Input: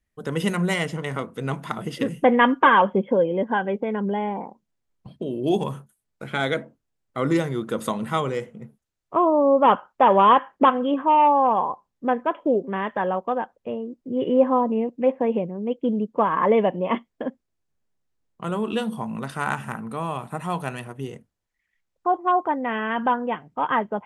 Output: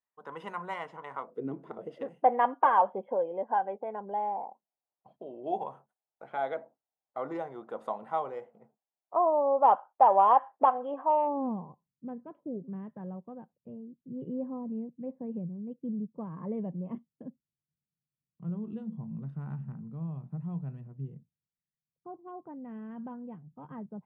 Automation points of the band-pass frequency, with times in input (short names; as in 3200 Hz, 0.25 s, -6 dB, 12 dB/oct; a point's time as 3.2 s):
band-pass, Q 3.8
1.21 s 960 Hz
1.46 s 290 Hz
2.08 s 760 Hz
11.07 s 760 Hz
11.66 s 150 Hz